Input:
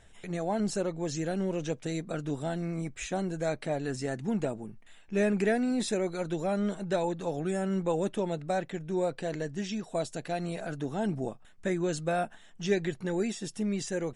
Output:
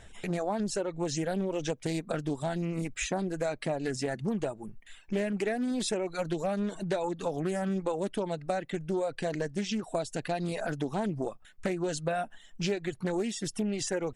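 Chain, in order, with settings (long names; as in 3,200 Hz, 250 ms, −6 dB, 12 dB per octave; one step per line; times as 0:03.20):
reverb reduction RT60 0.96 s
downward compressor 6 to 1, threshold −34 dBFS, peak gain reduction 12 dB
highs frequency-modulated by the lows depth 0.25 ms
level +6.5 dB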